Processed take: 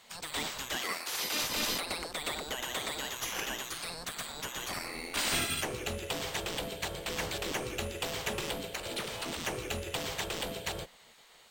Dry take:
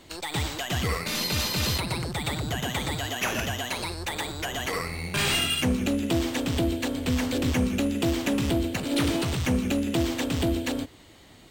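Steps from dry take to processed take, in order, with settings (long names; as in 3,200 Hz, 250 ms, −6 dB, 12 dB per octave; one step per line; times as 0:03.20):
0:08.72–0:09.39: downward compressor, threshold −26 dBFS, peak gain reduction 6 dB
gate on every frequency bin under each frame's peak −10 dB weak
0:00.76–0:01.41: high-pass filter 690 Hz → 270 Hz 6 dB per octave
level −2.5 dB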